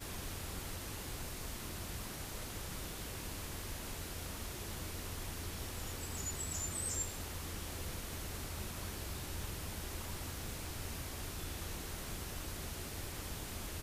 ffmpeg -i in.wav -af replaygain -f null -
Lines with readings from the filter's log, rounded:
track_gain = +29.3 dB
track_peak = 0.033